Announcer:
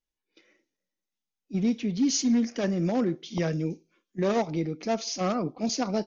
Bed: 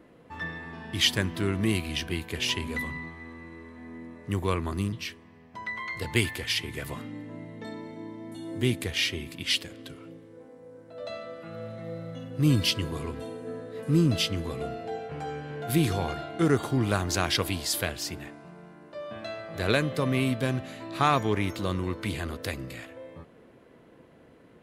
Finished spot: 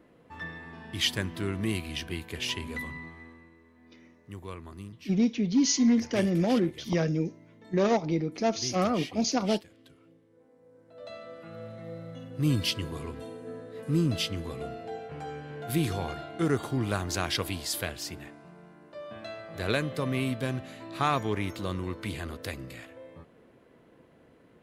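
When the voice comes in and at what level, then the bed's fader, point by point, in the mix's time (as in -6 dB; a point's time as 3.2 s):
3.55 s, +1.0 dB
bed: 3.2 s -4 dB
3.58 s -13.5 dB
10.27 s -13.5 dB
11.36 s -3.5 dB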